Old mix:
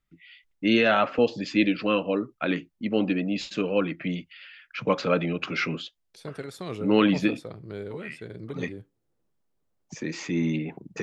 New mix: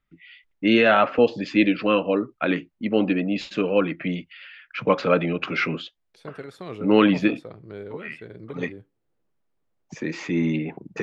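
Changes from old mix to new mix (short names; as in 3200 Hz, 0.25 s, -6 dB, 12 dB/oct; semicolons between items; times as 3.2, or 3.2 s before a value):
first voice +4.5 dB; master: add tone controls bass -3 dB, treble -10 dB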